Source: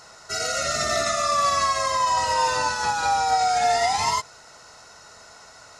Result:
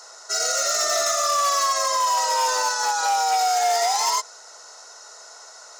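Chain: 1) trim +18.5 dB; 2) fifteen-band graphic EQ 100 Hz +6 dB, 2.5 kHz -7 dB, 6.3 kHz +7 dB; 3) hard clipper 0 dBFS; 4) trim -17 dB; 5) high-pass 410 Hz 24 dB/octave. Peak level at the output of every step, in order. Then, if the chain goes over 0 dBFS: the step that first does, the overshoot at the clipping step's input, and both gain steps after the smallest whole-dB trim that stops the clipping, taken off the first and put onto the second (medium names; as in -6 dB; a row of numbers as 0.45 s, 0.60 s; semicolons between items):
+7.5 dBFS, +9.0 dBFS, 0.0 dBFS, -17.0 dBFS, -10.0 dBFS; step 1, 9.0 dB; step 1 +9.5 dB, step 4 -8 dB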